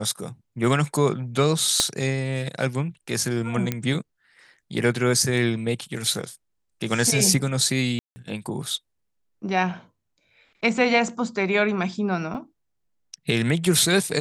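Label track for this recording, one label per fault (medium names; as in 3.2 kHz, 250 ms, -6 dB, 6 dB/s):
1.800000	1.800000	pop -5 dBFS
3.720000	3.720000	pop -10 dBFS
7.990000	8.160000	dropout 170 ms
12.340000	12.350000	dropout 6.7 ms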